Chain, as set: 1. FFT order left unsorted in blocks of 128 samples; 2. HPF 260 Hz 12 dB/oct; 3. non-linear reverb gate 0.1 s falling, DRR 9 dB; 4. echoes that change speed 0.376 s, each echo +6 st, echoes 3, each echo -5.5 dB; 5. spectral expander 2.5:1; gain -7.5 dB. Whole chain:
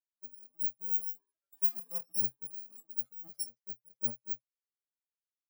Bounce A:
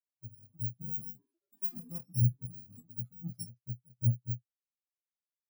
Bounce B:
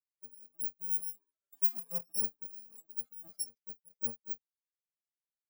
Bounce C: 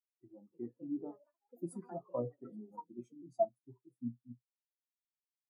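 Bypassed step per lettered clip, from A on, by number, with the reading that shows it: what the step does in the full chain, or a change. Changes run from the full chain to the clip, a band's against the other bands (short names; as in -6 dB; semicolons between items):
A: 2, 125 Hz band +32.5 dB; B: 3, momentary loudness spread change +3 LU; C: 1, crest factor change +2.0 dB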